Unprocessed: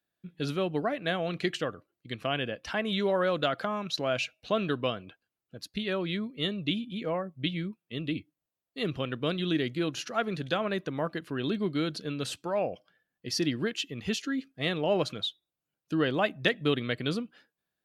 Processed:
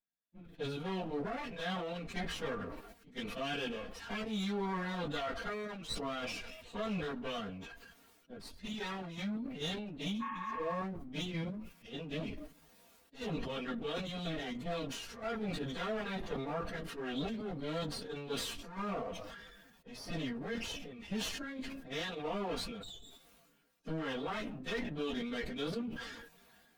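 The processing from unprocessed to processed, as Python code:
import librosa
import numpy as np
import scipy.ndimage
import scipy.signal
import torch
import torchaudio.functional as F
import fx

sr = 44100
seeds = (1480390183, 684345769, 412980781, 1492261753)

y = fx.lower_of_two(x, sr, delay_ms=4.3)
y = fx.high_shelf(y, sr, hz=5200.0, db=-6.0)
y = fx.level_steps(y, sr, step_db=11)
y = fx.stretch_vocoder_free(y, sr, factor=1.5)
y = fx.spec_repair(y, sr, seeds[0], start_s=10.23, length_s=0.49, low_hz=770.0, high_hz=3300.0, source='after')
y = fx.sustainer(y, sr, db_per_s=35.0)
y = F.gain(torch.from_numpy(y), -1.5).numpy()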